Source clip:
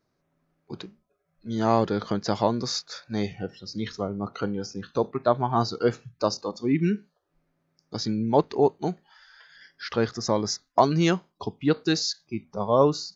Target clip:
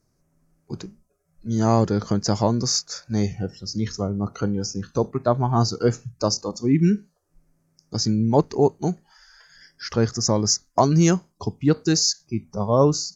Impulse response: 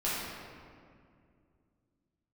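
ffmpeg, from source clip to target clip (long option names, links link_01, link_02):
-af "aemphasis=mode=reproduction:type=bsi,aexciter=amount=11.5:drive=7:freq=5500"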